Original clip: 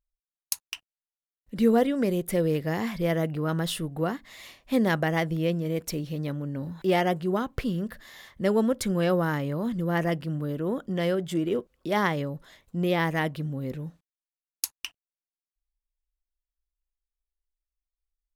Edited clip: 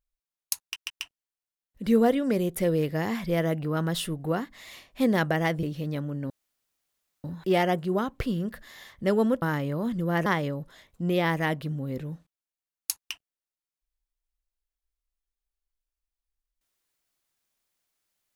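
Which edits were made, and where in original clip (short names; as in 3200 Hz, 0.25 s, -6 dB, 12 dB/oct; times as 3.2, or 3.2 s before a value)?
0.62 stutter 0.14 s, 3 plays
5.35–5.95 cut
6.62 insert room tone 0.94 s
8.8–9.22 cut
10.06–12 cut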